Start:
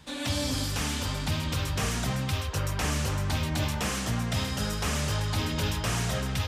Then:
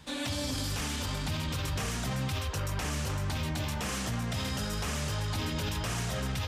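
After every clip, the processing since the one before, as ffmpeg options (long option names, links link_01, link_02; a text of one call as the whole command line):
ffmpeg -i in.wav -af "alimiter=level_in=1dB:limit=-24dB:level=0:latency=1:release=18,volume=-1dB" out.wav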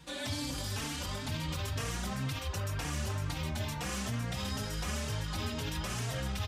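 ffmpeg -i in.wav -filter_complex "[0:a]areverse,acompressor=mode=upward:threshold=-34dB:ratio=2.5,areverse,asplit=2[link_01][link_02];[link_02]adelay=3.8,afreqshift=2.1[link_03];[link_01][link_03]amix=inputs=2:normalize=1" out.wav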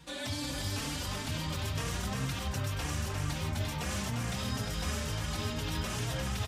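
ffmpeg -i in.wav -af "aecho=1:1:351:0.596" out.wav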